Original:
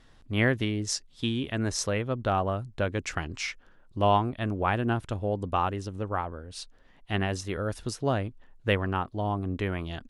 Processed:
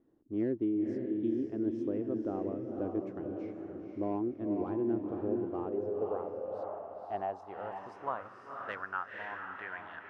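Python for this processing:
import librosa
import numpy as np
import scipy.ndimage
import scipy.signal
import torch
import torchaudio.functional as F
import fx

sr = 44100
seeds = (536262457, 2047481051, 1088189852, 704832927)

y = fx.high_shelf(x, sr, hz=2400.0, db=-9.5)
y = np.clip(10.0 ** (18.5 / 20.0) * y, -1.0, 1.0) / 10.0 ** (18.5 / 20.0)
y = fx.echo_diffused(y, sr, ms=514, feedback_pct=43, wet_db=-3.5)
y = fx.filter_sweep_bandpass(y, sr, from_hz=330.0, to_hz=1600.0, start_s=5.38, end_s=9.14, q=4.7)
y = F.gain(torch.from_numpy(y), 4.0).numpy()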